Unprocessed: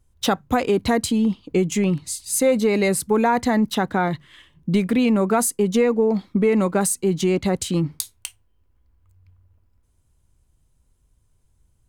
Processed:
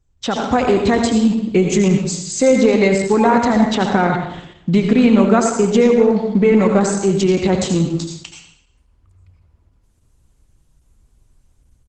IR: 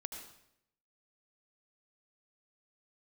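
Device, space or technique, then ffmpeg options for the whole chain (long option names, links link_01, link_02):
speakerphone in a meeting room: -filter_complex "[1:a]atrim=start_sample=2205[link_01];[0:a][link_01]afir=irnorm=-1:irlink=0,asplit=2[link_02][link_03];[link_03]adelay=110,highpass=300,lowpass=3400,asoftclip=type=hard:threshold=-16.5dB,volume=-26dB[link_04];[link_02][link_04]amix=inputs=2:normalize=0,dynaudnorm=framelen=280:gausssize=3:maxgain=8dB,volume=1.5dB" -ar 48000 -c:a libopus -b:a 12k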